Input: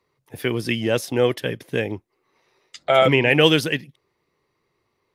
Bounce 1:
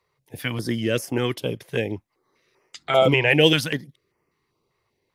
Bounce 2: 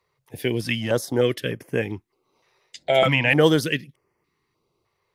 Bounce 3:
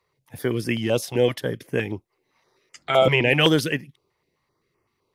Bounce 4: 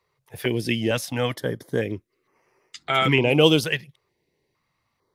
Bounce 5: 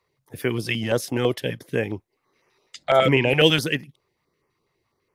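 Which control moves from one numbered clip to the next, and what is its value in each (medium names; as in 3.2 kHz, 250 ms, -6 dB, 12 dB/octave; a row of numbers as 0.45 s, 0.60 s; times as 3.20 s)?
step-sequenced notch, rate: 5.1 Hz, 3.3 Hz, 7.8 Hz, 2.2 Hz, 12 Hz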